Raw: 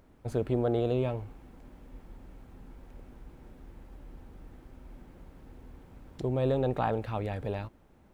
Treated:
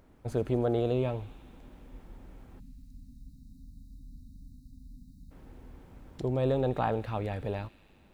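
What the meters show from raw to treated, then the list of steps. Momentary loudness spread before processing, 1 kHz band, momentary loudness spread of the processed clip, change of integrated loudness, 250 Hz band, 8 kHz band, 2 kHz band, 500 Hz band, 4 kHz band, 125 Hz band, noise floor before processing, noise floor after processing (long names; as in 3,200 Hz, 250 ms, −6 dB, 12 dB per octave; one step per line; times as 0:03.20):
11 LU, 0.0 dB, 11 LU, 0.0 dB, 0.0 dB, can't be measured, 0.0 dB, 0.0 dB, +0.5 dB, 0.0 dB, −60 dBFS, −59 dBFS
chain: time-frequency box erased 0:02.59–0:05.31, 300–3,700 Hz
delay with a high-pass on its return 81 ms, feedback 83%, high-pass 2,700 Hz, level −15 dB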